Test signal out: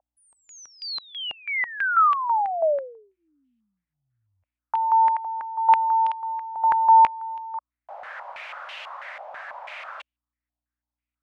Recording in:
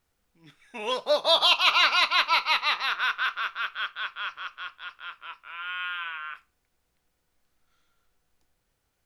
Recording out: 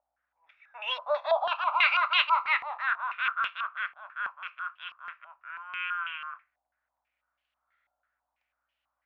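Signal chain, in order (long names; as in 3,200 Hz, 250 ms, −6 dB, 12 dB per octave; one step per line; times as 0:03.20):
mains hum 60 Hz, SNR 21 dB
elliptic high-pass filter 580 Hz, stop band 40 dB
low-pass on a step sequencer 6.1 Hz 770–2,900 Hz
level −7 dB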